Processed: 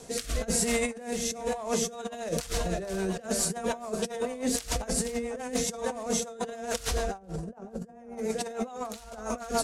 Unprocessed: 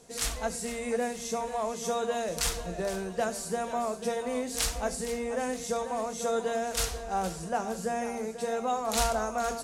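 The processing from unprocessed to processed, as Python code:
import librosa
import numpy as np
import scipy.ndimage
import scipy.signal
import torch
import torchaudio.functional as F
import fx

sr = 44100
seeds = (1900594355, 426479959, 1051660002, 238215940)

y = fx.tilt_shelf(x, sr, db=9.0, hz=1500.0, at=(7.17, 8.17), fade=0.02)
y = fx.over_compress(y, sr, threshold_db=-36.0, ratio=-0.5)
y = fx.rotary_switch(y, sr, hz=1.0, then_hz=7.0, switch_at_s=1.55)
y = y * librosa.db_to_amplitude(6.5)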